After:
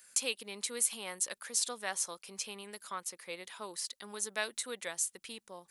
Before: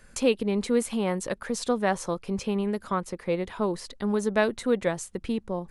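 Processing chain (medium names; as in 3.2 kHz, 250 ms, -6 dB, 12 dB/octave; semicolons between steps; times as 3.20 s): differentiator; trim +5 dB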